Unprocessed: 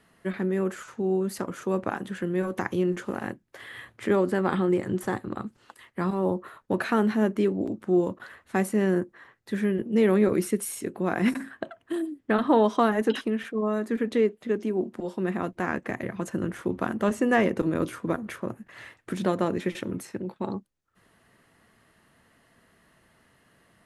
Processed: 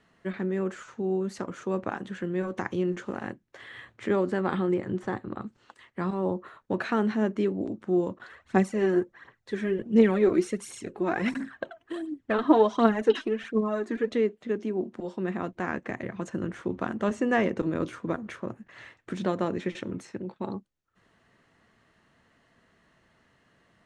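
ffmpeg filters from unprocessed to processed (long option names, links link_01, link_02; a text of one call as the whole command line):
ffmpeg -i in.wav -filter_complex "[0:a]asettb=1/sr,asplit=3[link_01][link_02][link_03];[link_01]atrim=end=4.744[link_04];[link_02]atrim=start=4.74:end=5.42,asetpts=PTS-STARTPTS,afade=type=in:duration=0.004:curve=qsin,afade=type=out:start_time=0.676:duration=0.004:curve=qsin,highshelf=frequency=5700:gain=-11[link_05];[link_03]atrim=start=5.416[link_06];[link_04][link_05]acrossfade=duration=0.004:curve1=hsin:curve2=qsin[link_07];[link_07][link_06]acrossfade=duration=0.004:curve1=qsin:curve2=hsin,asplit=3[link_08][link_09][link_10];[link_08]afade=type=out:start_time=8.24:duration=0.02[link_11];[link_09]aphaser=in_gain=1:out_gain=1:delay=3.3:decay=0.57:speed=1.4:type=triangular,afade=type=in:start_time=8.24:duration=0.02,afade=type=out:start_time=14.13:duration=0.02[link_12];[link_10]afade=type=in:start_time=14.13:duration=0.02[link_13];[link_11][link_12][link_13]amix=inputs=3:normalize=0,lowpass=frequency=7400:width=0.5412,lowpass=frequency=7400:width=1.3066,bandreject=frequency=4900:width=19,volume=-2.5dB" out.wav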